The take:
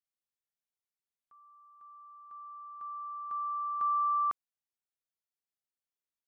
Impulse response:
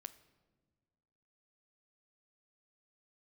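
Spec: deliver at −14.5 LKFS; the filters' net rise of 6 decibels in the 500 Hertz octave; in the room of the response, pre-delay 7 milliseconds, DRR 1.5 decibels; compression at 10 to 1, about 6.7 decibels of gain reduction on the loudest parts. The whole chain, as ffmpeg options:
-filter_complex "[0:a]equalizer=frequency=500:width_type=o:gain=7.5,acompressor=threshold=-33dB:ratio=10,asplit=2[link_01][link_02];[1:a]atrim=start_sample=2205,adelay=7[link_03];[link_02][link_03]afir=irnorm=-1:irlink=0,volume=4dB[link_04];[link_01][link_04]amix=inputs=2:normalize=0,volume=20dB"

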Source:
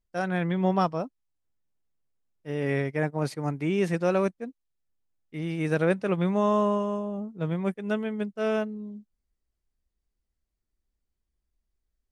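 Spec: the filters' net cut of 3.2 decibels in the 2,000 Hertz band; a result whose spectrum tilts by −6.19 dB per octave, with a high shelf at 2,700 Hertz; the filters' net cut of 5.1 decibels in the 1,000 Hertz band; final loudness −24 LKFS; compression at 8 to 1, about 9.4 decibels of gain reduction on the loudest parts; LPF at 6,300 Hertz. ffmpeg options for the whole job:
ffmpeg -i in.wav -af "lowpass=6300,equalizer=frequency=1000:width_type=o:gain=-6.5,equalizer=frequency=2000:width_type=o:gain=-4,highshelf=frequency=2700:gain=5.5,acompressor=threshold=-30dB:ratio=8,volume=12dB" out.wav

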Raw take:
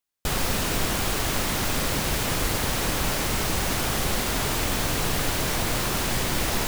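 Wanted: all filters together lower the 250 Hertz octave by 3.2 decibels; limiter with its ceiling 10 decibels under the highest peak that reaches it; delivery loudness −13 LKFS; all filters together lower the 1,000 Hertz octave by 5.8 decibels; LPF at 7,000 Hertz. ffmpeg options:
ffmpeg -i in.wav -af "lowpass=7000,equalizer=frequency=250:width_type=o:gain=-4,equalizer=frequency=1000:width_type=o:gain=-7.5,volume=20.5dB,alimiter=limit=-3.5dB:level=0:latency=1" out.wav

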